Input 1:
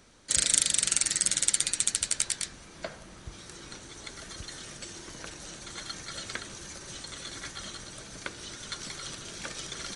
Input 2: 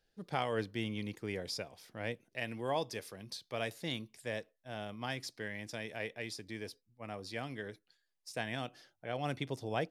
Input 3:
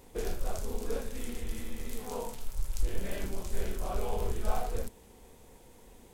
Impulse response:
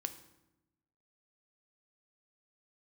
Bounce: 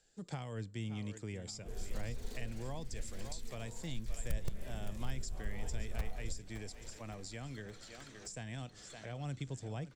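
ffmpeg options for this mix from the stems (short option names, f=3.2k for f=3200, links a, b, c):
-filter_complex "[0:a]lowpass=5.6k,volume=34dB,asoftclip=hard,volume=-34dB,adelay=1650,volume=-13.5dB[a];[1:a]lowpass=f=7.5k:t=q:w=16,volume=3dB,asplit=2[b][c];[c]volume=-16dB[d];[2:a]aeval=exprs='(mod(7.94*val(0)+1,2)-1)/7.94':c=same,adelay=1500,volume=-7dB,asplit=2[e][f];[f]volume=-14.5dB[g];[d][g]amix=inputs=2:normalize=0,aecho=0:1:566|1132|1698|2264|2830|3396|3962:1|0.51|0.26|0.133|0.0677|0.0345|0.0176[h];[a][b][e][h]amix=inputs=4:normalize=0,acrossover=split=180[i][j];[j]acompressor=threshold=-47dB:ratio=5[k];[i][k]amix=inputs=2:normalize=0"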